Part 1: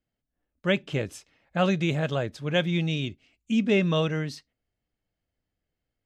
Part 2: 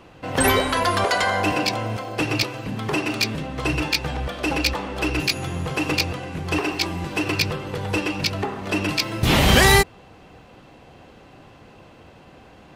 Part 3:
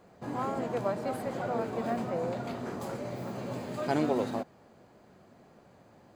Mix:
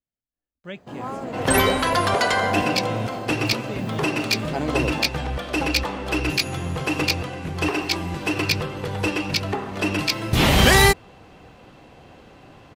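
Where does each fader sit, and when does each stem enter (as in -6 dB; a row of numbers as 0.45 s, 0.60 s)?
-12.0 dB, 0.0 dB, +1.5 dB; 0.00 s, 1.10 s, 0.65 s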